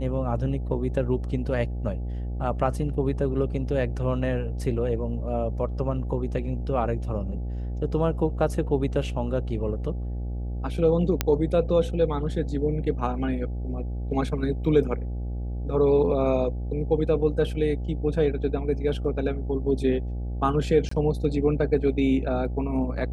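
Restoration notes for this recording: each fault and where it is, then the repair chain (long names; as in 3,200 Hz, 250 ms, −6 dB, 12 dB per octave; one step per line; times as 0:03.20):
mains buzz 60 Hz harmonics 14 −30 dBFS
0:11.21: click −6 dBFS
0:20.89–0:20.91: drop-out 24 ms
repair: click removal
hum removal 60 Hz, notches 14
repair the gap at 0:20.89, 24 ms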